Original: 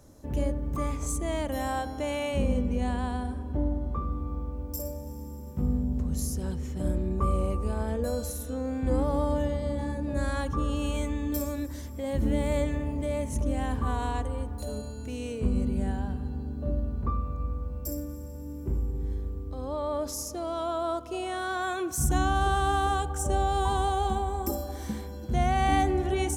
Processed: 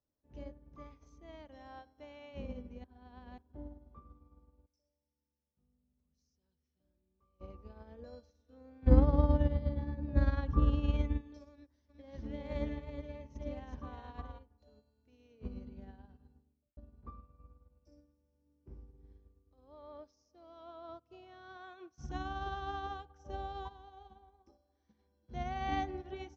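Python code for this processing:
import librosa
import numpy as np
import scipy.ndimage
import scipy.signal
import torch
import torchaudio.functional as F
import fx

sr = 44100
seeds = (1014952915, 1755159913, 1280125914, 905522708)

y = fx.pre_emphasis(x, sr, coefficient=0.8, at=(4.66, 7.41))
y = fx.bass_treble(y, sr, bass_db=11, treble_db=-6, at=(8.87, 11.21))
y = fx.echo_single(y, sr, ms=370, db=-3.5, at=(11.88, 14.38), fade=0.02)
y = fx.studio_fade_out(y, sr, start_s=16.28, length_s=0.49)
y = fx.peak_eq(y, sr, hz=120.0, db=14.0, octaves=1.0, at=(20.89, 21.57))
y = fx.comb_fb(y, sr, f0_hz=59.0, decay_s=0.6, harmonics='odd', damping=0.0, mix_pct=50, at=(23.67, 24.98), fade=0.02)
y = fx.edit(y, sr, fx.reverse_span(start_s=2.84, length_s=0.54), tone=tone)
y = scipy.signal.sosfilt(scipy.signal.butter(12, 6000.0, 'lowpass', fs=sr, output='sos'), y)
y = fx.low_shelf(y, sr, hz=190.0, db=-4.0)
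y = fx.upward_expand(y, sr, threshold_db=-40.0, expansion=2.5)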